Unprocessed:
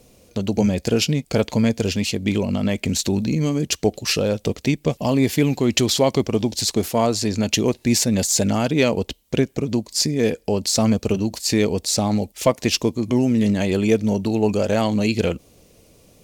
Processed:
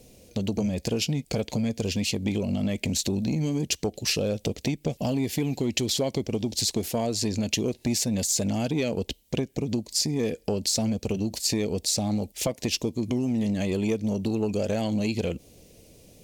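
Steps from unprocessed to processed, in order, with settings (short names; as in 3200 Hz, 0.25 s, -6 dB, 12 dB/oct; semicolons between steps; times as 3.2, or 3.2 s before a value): bell 1200 Hz -11 dB 0.79 oct; compressor, threshold -22 dBFS, peak gain reduction 9.5 dB; core saturation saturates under 360 Hz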